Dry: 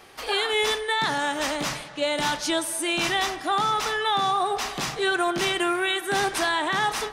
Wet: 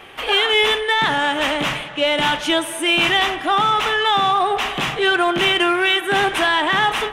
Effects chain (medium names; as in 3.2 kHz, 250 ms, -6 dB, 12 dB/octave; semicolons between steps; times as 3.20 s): resonant high shelf 3.8 kHz -7 dB, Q 3; in parallel at -7.5 dB: saturation -27 dBFS, distortion -8 dB; on the sum: trim +4.5 dB